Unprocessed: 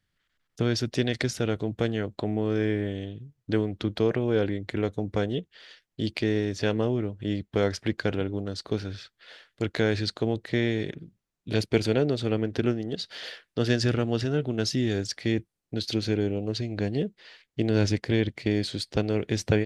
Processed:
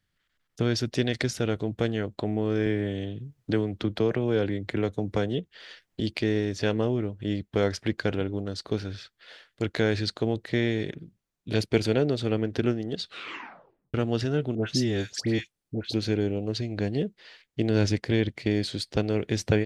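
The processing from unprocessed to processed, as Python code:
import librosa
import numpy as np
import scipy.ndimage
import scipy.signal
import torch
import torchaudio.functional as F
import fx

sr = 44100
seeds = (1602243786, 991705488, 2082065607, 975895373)

y = fx.band_squash(x, sr, depth_pct=40, at=(2.66, 6.0))
y = fx.dispersion(y, sr, late='highs', ms=94.0, hz=1400.0, at=(14.55, 15.94))
y = fx.edit(y, sr, fx.tape_stop(start_s=12.99, length_s=0.95), tone=tone)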